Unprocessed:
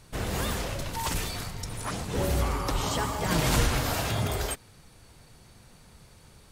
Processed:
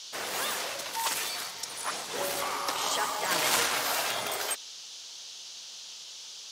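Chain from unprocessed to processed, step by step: added harmonics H 3 -23 dB, 4 -27 dB, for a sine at -11.5 dBFS; Bessel high-pass 760 Hz, order 2; band noise 2900–6600 Hz -49 dBFS; gain +4.5 dB

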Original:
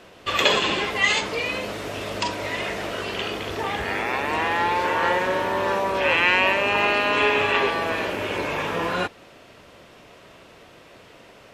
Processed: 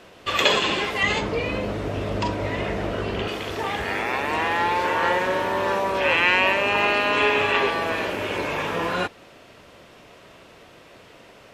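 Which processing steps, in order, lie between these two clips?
1.03–3.28 tilt -3 dB/oct

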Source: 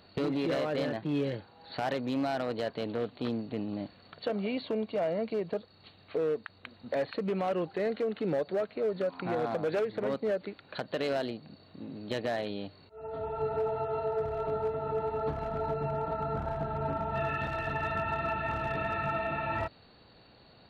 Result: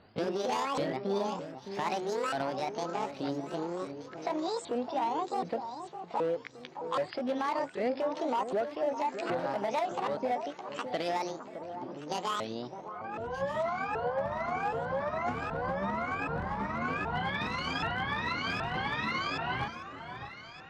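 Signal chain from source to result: repeated pitch sweeps +11.5 st, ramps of 0.775 s; low-pass opened by the level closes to 2400 Hz, open at -29.5 dBFS; echo with dull and thin repeats by turns 0.613 s, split 1400 Hz, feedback 61%, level -9 dB

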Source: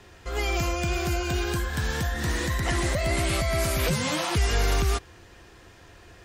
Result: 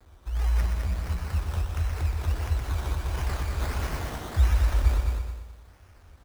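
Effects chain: HPF 46 Hz 12 dB/oct; reverb removal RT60 1 s; inverse Chebyshev band-stop 380–1200 Hz, stop band 80 dB; low shelf 73 Hz +12 dB; notches 50/100 Hz; requantised 10-bit, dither none; 0.6–1.26 AM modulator 120 Hz, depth 35%; decimation with a swept rate 15×, swing 60% 1.5 Hz; feedback echo 0.21 s, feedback 28%, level -5 dB; lo-fi delay 0.123 s, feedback 35%, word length 10-bit, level -6 dB

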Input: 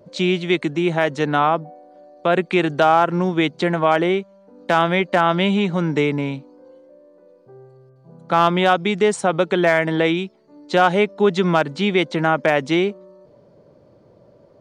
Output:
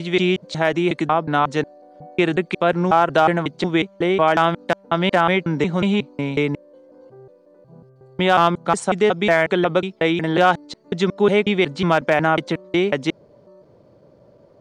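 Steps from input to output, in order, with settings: slices in reverse order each 0.182 s, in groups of 3

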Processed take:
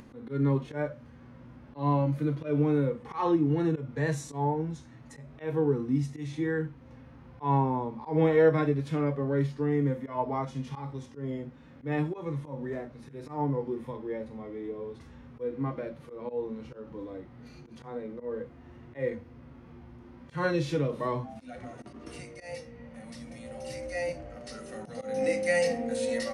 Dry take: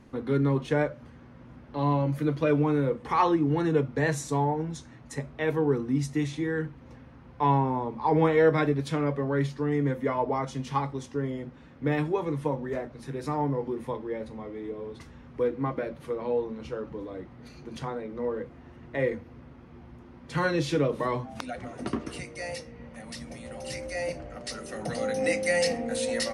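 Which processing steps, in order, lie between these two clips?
auto swell 0.147 s; harmonic-percussive split percussive -12 dB; upward compressor, threshold -44 dBFS

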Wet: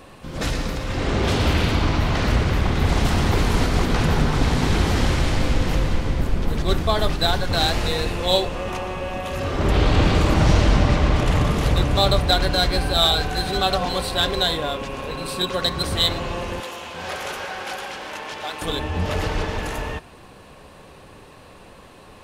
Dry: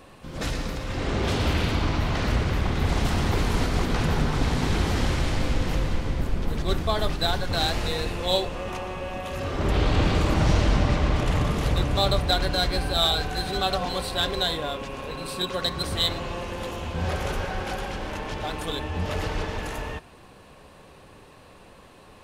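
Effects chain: 16.6–18.62 HPF 870 Hz 6 dB/oct; gain +4.5 dB

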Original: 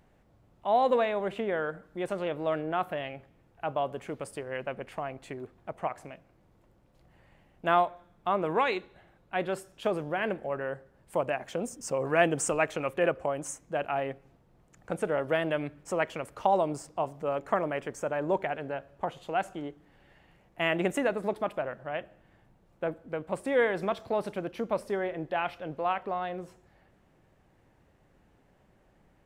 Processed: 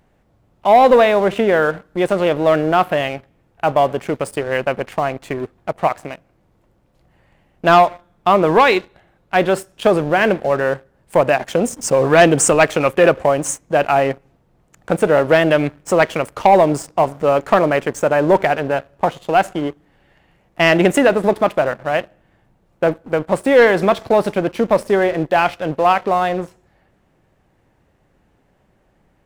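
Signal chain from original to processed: sample leveller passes 2; gain +8.5 dB

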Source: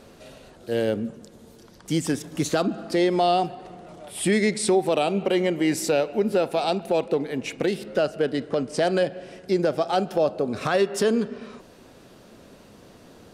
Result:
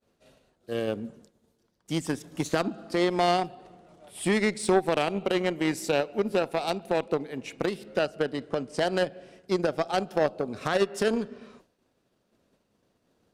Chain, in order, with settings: added harmonics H 3 -13 dB, 5 -38 dB, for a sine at -11 dBFS; expander -47 dBFS

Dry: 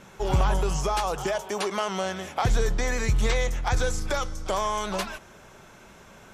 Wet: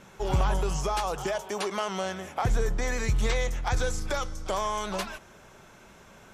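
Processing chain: 2.13–2.82 dynamic EQ 4000 Hz, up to -7 dB, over -49 dBFS, Q 1.2; gain -2.5 dB

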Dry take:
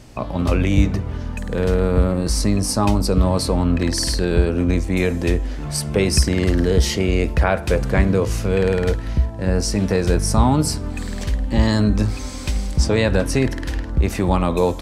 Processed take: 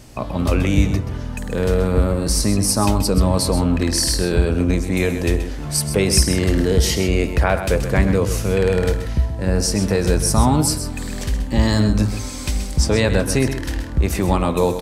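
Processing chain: high shelf 8100 Hz +9.5 dB; echo 0.129 s -10 dB

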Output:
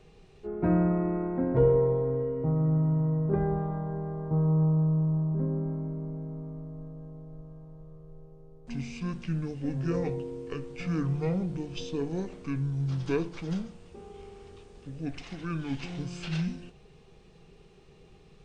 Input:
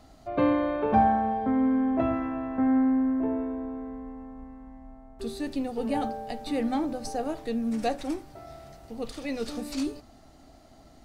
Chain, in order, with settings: wide varispeed 0.599×; gain -1.5 dB

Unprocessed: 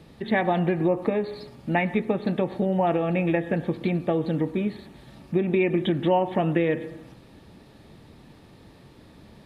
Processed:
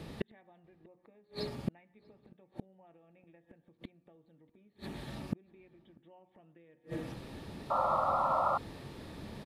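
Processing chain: notches 60/120/180/240/300 Hz; flipped gate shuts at -24 dBFS, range -42 dB; outdoor echo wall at 110 m, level -26 dB; painted sound noise, 7.7–8.58, 510–1400 Hz -34 dBFS; gain +4 dB

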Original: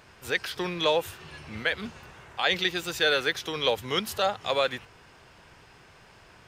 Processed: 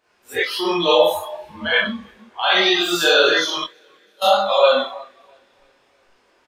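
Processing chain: resonant low shelf 210 Hz -10 dB, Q 1.5; Schroeder reverb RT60 0.74 s, combs from 31 ms, DRR -6.5 dB; in parallel at -2 dB: limiter -13 dBFS, peak gain reduction 9 dB; 3.56–4.22 on the sum: flipped gate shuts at -10 dBFS, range -28 dB; chorus voices 2, 1.4 Hz, delay 22 ms, depth 3 ms; on a send: feedback echo 0.328 s, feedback 54%, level -16.5 dB; on the sum: spectral noise reduction 19 dB; gain +3 dB

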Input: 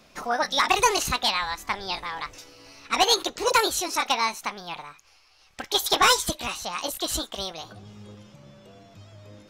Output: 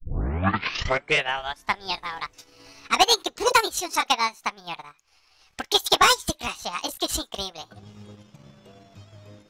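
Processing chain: tape start at the beginning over 1.79 s; transient shaper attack +4 dB, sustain -11 dB; notch 560 Hz, Q 12

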